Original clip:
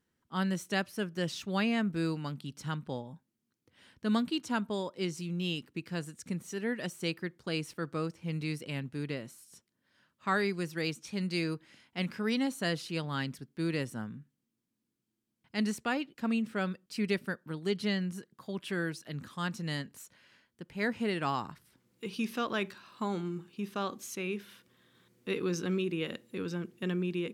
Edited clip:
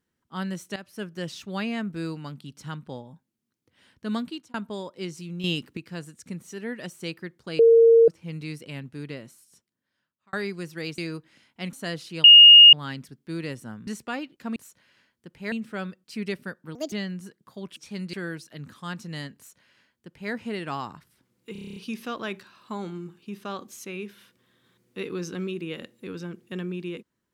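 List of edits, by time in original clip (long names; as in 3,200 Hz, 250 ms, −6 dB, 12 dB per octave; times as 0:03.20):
0:00.76–0:01.02: fade in, from −15 dB
0:04.25–0:04.54: fade out
0:05.44–0:05.77: clip gain +7.5 dB
0:07.59–0:08.08: beep over 459 Hz −11 dBFS
0:09.27–0:10.33: fade out
0:10.98–0:11.35: move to 0:18.68
0:12.10–0:12.52: remove
0:13.03: insert tone 2,850 Hz −6 dBFS 0.49 s
0:14.17–0:15.65: remove
0:17.57–0:17.84: play speed 156%
0:19.91–0:20.87: duplicate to 0:16.34
0:22.07: stutter 0.03 s, 9 plays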